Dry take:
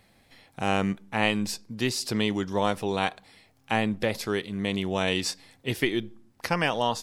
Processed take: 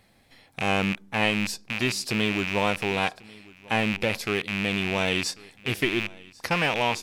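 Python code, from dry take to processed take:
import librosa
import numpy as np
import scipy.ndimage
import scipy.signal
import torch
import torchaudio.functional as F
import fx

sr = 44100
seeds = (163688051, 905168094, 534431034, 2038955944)

y = fx.rattle_buzz(x, sr, strikes_db=-39.0, level_db=-16.0)
y = y + 10.0 ** (-23.0 / 20.0) * np.pad(y, (int(1093 * sr / 1000.0), 0))[:len(y)]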